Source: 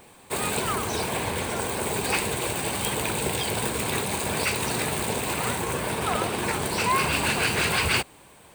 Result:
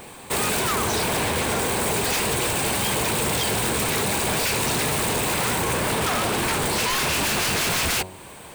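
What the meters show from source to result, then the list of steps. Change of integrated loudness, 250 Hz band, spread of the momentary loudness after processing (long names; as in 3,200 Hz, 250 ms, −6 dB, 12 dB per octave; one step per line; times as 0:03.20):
+3.5 dB, +3.0 dB, 2 LU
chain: hum removal 92.78 Hz, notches 11
in parallel at −2 dB: downward compressor, threshold −35 dBFS, peak gain reduction 15 dB
on the sum: wave folding −23 dBFS
level +5 dB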